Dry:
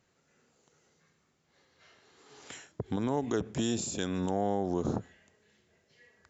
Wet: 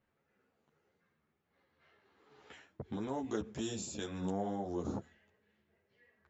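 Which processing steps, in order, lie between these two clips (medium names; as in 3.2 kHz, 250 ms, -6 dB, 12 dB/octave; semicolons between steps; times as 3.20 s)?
level-controlled noise filter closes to 2.4 kHz, open at -26.5 dBFS; three-phase chorus; trim -3.5 dB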